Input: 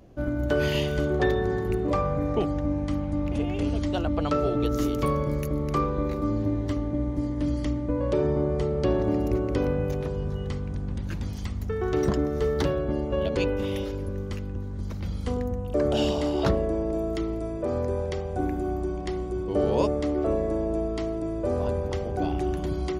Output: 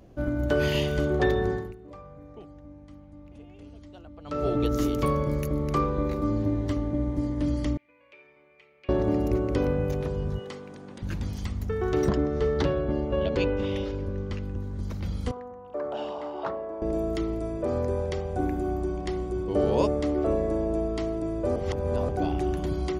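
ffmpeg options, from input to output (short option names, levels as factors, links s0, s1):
-filter_complex "[0:a]asettb=1/sr,asplit=3[s0][s1][s2];[s0]atrim=end=7.774[s3];[s1]atrim=start=7.77:end=8.89,asetpts=PTS-STARTPTS,afade=t=in:d=0.004:c=qsin,afade=t=out:st=1.116:d=0.004:c=qsin,bandpass=f=2400:t=q:w=9.9[s4];[s2]atrim=start=8.886[s5];[s3][s4]acrossfade=d=0.004:c1=hsin:c2=qsin[s6];[s6][s5]acrossfade=d=0.004:c1=qsin:c2=hsin,asettb=1/sr,asplit=3[s7][s8][s9];[s7]atrim=end=10.394[s10];[s8]atrim=start=10.39:end=11.02,asetpts=PTS-STARTPTS,afade=t=in:d=0.004:c=qsin,afade=t=out:st=0.626:d=0.004:c=qsin,highpass=330[s11];[s9]atrim=start=11.016[s12];[s10][s11]acrossfade=d=0.004:c1=hsin:c2=qsin[s13];[s13][s12]acrossfade=d=0.004:c1=qsin:c2=hsin,asettb=1/sr,asplit=3[s14][s15][s16];[s14]atrim=end=12.094[s17];[s15]atrim=start=12.09:end=14.43,asetpts=PTS-STARTPTS,afade=t=in:d=0.004:c=qsin,afade=t=out:st=2.336:d=0.004:c=qsin,lowpass=5300[s18];[s16]atrim=start=14.426[s19];[s17][s18]acrossfade=d=0.004:c1=hsin:c2=qsin[s20];[s20][s19]acrossfade=d=0.004:c1=qsin:c2=hsin,asettb=1/sr,asplit=3[s21][s22][s23];[s21]atrim=end=15.314[s24];[s22]atrim=start=15.31:end=16.82,asetpts=PTS-STARTPTS,afade=t=in:d=0.004:c=qsin,afade=t=out:st=1.506:d=0.004:c=qsin,bandpass=f=980:t=q:w=1.6[s25];[s23]atrim=start=16.816[s26];[s24][s25]acrossfade=d=0.004:c1=hsin:c2=qsin[s27];[s27][s26]acrossfade=d=0.004:c1=qsin:c2=hsin,asplit=5[s28][s29][s30][s31][s32];[s28]atrim=end=1.74,asetpts=PTS-STARTPTS,afade=t=out:st=1.48:d=0.26:silence=0.1[s33];[s29]atrim=start=1.74:end=4.24,asetpts=PTS-STARTPTS,volume=0.1[s34];[s30]atrim=start=4.24:end=21.562,asetpts=PTS-STARTPTS,afade=t=in:d=0.26:silence=0.1[s35];[s31]atrim=start=21.558:end=22.092,asetpts=PTS-STARTPTS,areverse[s36];[s32]atrim=start=22.088[s37];[s33][s34][s35]concat=n=3:v=0:a=1[s38];[s38][s36]acrossfade=d=0.004:c1=hsin:c2=hsin[s39];[s39][s37]acrossfade=d=0.004:c1=hsin:c2=hsin"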